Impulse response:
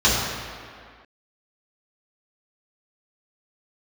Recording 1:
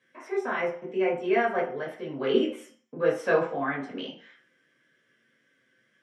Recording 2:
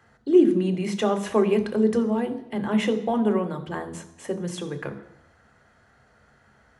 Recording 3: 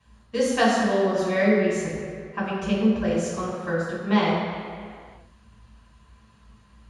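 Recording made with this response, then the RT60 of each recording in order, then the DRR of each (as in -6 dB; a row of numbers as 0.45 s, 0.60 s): 3; 0.55 s, no single decay rate, 2.1 s; -5.0 dB, 7.0 dB, -8.5 dB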